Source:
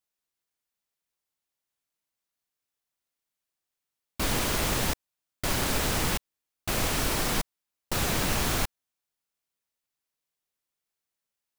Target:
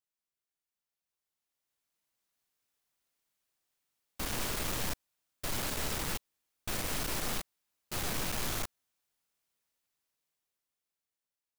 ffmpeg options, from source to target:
-af "dynaudnorm=f=330:g=11:m=4.47,aeval=exprs='(tanh(39.8*val(0)+0.8)-tanh(0.8))/39.8':c=same,volume=0.75"

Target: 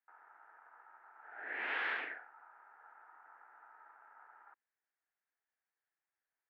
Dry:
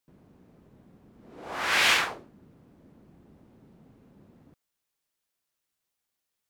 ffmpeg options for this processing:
-filter_complex "[0:a]aeval=exprs='val(0)*sin(2*PI*1100*n/s)':c=same,highpass=f=380:w=0.5412,highpass=f=380:w=1.3066,equalizer=f=390:t=q:w=4:g=-4,equalizer=f=560:t=q:w=4:g=-9,equalizer=f=1100:t=q:w=4:g=-5,equalizer=f=1700:t=q:w=4:g=7,lowpass=f=2000:w=0.5412,lowpass=f=2000:w=1.3066,acrossover=split=710|1500[s0][s1][s2];[s0]acompressor=threshold=0.00251:ratio=4[s3];[s1]acompressor=threshold=0.00355:ratio=4[s4];[s2]acompressor=threshold=0.0141:ratio=4[s5];[s3][s4][s5]amix=inputs=3:normalize=0"

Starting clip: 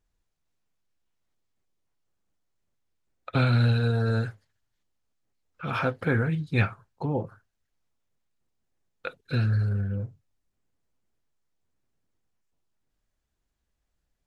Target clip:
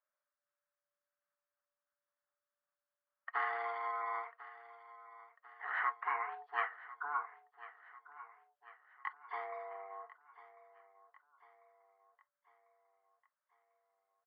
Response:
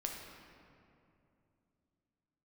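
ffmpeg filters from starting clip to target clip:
-af "aeval=exprs='val(0)*sin(2*PI*580*n/s)':c=same,asuperpass=centerf=1400:order=4:qfactor=2,aecho=1:1:1046|2092|3138|4184:0.141|0.072|0.0367|0.0187,volume=1.33"

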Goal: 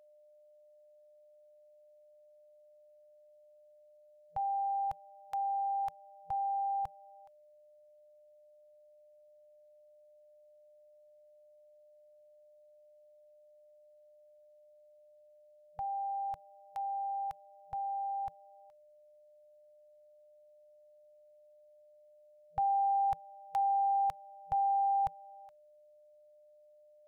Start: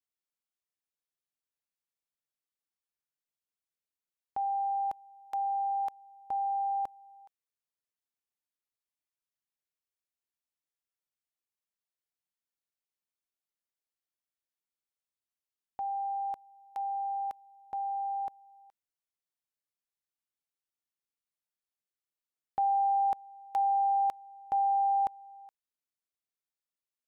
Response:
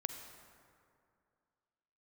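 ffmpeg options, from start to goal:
-af "afftfilt=real='re*(1-between(b*sr/4096,170,480))':imag='im*(1-between(b*sr/4096,170,480))':win_size=4096:overlap=0.75,asubboost=boost=4.5:cutoff=240,aeval=exprs='val(0)+0.00112*sin(2*PI*600*n/s)':c=same"

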